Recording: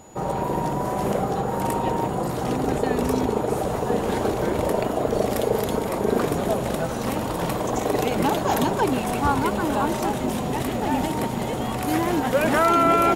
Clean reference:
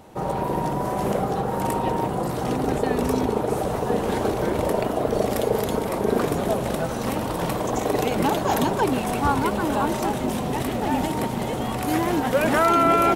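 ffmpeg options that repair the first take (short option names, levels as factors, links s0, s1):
-af "bandreject=f=6900:w=30"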